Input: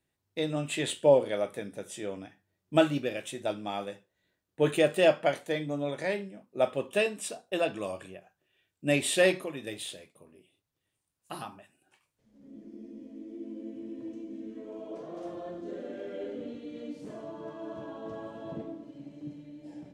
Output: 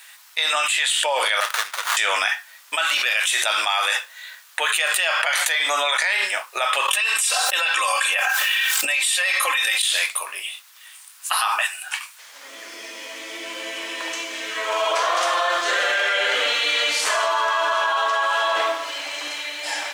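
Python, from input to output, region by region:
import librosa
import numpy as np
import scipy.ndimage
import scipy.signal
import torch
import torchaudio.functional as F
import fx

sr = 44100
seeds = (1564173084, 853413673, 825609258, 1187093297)

y = fx.chain(x, sr, fx.pre_emphasis(coefficient=0.9),
    fx.running_max(window=17), at=(1.4, 1.97))
y = fx.chain(y, sr, fx.comb(ms=3.8, depth=0.82),
    fx.env_flatten(amount_pct=50), at=(6.88, 9.82))
y = scipy.signal.sosfilt(scipy.signal.butter(4, 1100.0, 'highpass', fs=sr, output='sos'), y)
y = fx.env_flatten(y, sr, amount_pct=100)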